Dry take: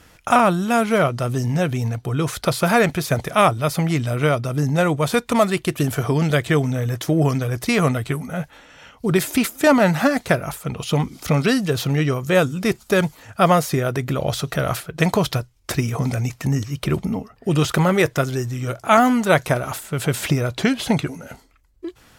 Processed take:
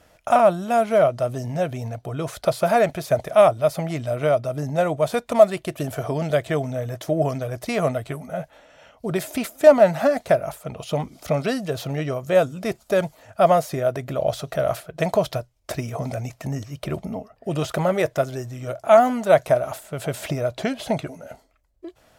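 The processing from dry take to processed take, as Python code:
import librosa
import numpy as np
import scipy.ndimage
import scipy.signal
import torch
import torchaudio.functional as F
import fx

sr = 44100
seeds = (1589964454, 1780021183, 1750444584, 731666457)

y = fx.peak_eq(x, sr, hz=630.0, db=15.0, octaves=0.49)
y = y * librosa.db_to_amplitude(-8.0)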